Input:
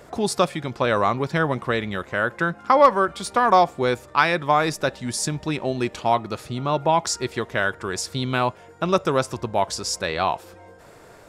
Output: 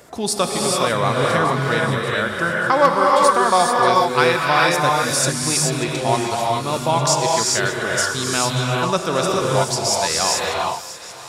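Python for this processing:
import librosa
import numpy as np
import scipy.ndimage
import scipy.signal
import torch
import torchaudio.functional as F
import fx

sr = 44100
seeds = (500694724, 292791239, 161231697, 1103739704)

y = scipy.signal.sosfilt(scipy.signal.butter(2, 53.0, 'highpass', fs=sr, output='sos'), x)
y = fx.high_shelf(y, sr, hz=3600.0, db=9.5)
y = fx.echo_thinned(y, sr, ms=585, feedback_pct=73, hz=1100.0, wet_db=-15.0)
y = fx.rev_gated(y, sr, seeds[0], gate_ms=460, shape='rising', drr_db=-2.5)
y = y * 10.0 ** (-1.5 / 20.0)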